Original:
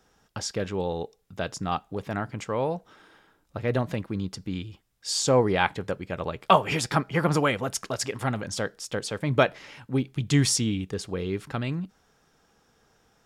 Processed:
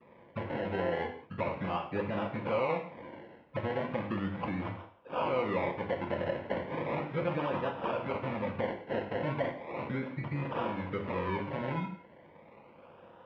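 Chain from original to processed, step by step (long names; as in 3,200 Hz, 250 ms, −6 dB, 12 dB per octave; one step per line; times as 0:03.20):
every frequency bin delayed by itself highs late, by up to 158 ms
parametric band 560 Hz −4 dB 2.7 octaves
mains-hum notches 50/100/150/200/250/300 Hz
downward compressor 5 to 1, threshold −41 dBFS, peak gain reduction 22 dB
brickwall limiter −35.5 dBFS, peak gain reduction 7.5 dB
sample-and-hold swept by an LFO 29×, swing 60% 0.36 Hz
loudspeaker in its box 130–2,900 Hz, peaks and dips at 530 Hz +8 dB, 1,000 Hz +7 dB, 2,200 Hz +6 dB
reverb whose tail is shaped and stops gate 210 ms falling, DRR 4 dB
level +8.5 dB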